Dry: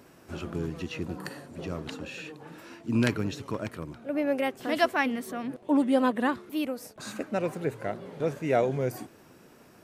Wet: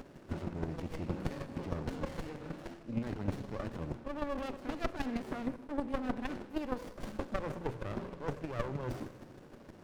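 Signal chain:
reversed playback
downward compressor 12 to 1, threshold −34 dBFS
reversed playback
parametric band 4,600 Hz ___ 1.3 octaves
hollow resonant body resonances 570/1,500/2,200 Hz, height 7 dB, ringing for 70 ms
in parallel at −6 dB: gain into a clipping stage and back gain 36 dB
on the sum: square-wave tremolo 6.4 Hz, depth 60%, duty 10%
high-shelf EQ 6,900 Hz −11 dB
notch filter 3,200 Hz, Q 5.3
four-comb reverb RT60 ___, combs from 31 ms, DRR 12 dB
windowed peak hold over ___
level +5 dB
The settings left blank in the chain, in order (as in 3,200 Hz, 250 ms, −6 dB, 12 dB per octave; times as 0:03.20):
+5 dB, 1.4 s, 33 samples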